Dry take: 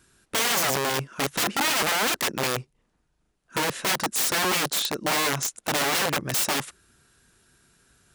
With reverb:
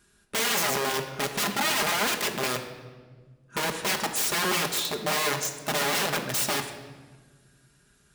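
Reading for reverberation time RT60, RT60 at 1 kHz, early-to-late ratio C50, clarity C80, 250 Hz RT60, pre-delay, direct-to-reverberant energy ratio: 1.5 s, 1.3 s, 8.5 dB, 10.0 dB, 2.3 s, 5 ms, 3.0 dB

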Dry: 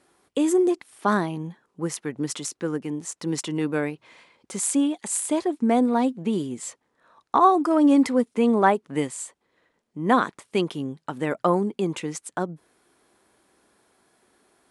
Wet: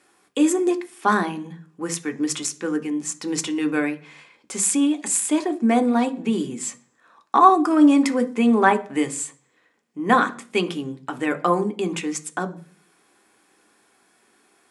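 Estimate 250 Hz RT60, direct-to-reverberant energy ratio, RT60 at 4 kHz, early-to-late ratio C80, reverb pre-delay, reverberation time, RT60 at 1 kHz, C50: 0.65 s, 7.0 dB, 0.50 s, 22.5 dB, 3 ms, 0.40 s, 0.40 s, 18.0 dB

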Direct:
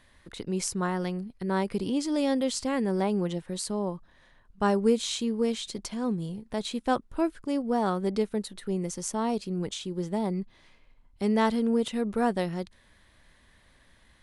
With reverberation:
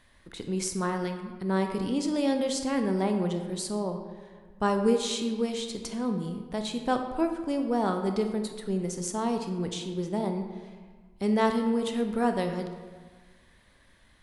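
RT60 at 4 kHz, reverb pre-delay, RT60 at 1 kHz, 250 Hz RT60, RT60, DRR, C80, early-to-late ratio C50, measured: 0.90 s, 20 ms, 1.5 s, 1.5 s, 1.5 s, 5.5 dB, 8.5 dB, 7.0 dB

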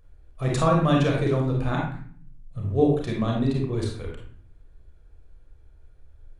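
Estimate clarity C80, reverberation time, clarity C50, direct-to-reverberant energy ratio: 7.0 dB, 0.45 s, 2.0 dB, -1.5 dB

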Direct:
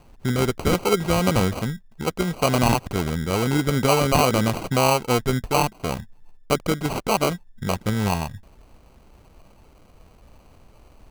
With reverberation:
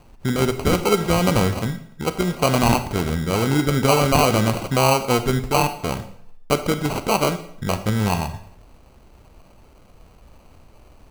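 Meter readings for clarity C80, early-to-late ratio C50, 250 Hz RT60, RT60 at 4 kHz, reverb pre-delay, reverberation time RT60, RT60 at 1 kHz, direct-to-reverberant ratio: 14.5 dB, 12.0 dB, 0.60 s, 0.60 s, 27 ms, 0.65 s, 0.65 s, 9.5 dB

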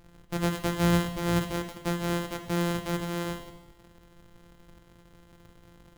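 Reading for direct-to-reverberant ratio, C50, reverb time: 6.0 dB, 9.5 dB, 1.0 s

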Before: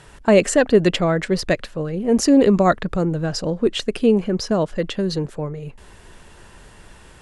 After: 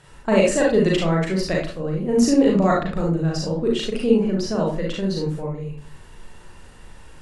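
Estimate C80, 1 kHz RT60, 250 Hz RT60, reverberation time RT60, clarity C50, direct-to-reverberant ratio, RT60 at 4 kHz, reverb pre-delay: 10.0 dB, 0.40 s, 0.55 s, 0.40 s, 2.5 dB, -3.0 dB, 0.25 s, 36 ms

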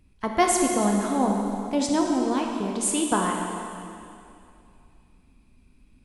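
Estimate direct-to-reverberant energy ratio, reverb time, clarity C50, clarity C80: 0.5 dB, 2.6 s, 2.0 dB, 3.0 dB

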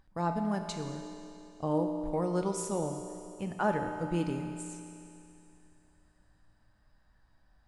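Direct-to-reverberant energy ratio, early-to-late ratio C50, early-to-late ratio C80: 4.0 dB, 5.5 dB, 6.0 dB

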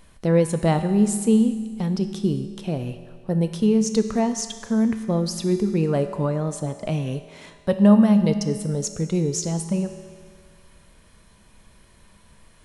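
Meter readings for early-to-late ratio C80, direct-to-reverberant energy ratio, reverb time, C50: 10.5 dB, 7.5 dB, 1.8 s, 9.5 dB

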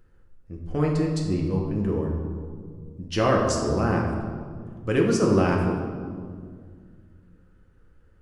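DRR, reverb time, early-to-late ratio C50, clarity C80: -1.5 dB, 2.0 s, 2.5 dB, 4.5 dB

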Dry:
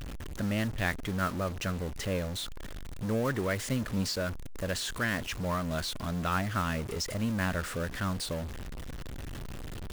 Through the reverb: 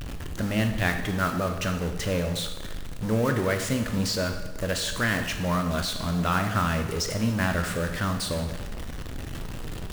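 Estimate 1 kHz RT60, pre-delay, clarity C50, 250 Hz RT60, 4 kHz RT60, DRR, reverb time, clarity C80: 1.1 s, 8 ms, 7.5 dB, 1.1 s, 1.0 s, 5.0 dB, 1.1 s, 9.5 dB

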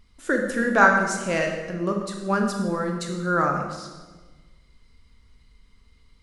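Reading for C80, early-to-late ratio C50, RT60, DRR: 6.0 dB, 4.5 dB, 1.3 s, 2.0 dB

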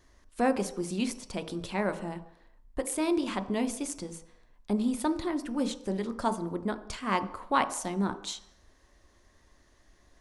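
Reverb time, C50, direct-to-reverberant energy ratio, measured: 0.70 s, 14.0 dB, 9.0 dB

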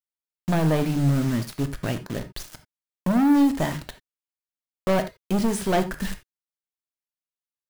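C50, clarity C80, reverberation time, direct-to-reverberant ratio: 13.0 dB, 18.5 dB, no single decay rate, 8.0 dB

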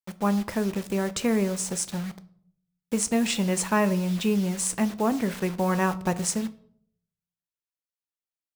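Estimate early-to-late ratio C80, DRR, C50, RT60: 21.5 dB, 11.0 dB, 18.0 dB, 0.60 s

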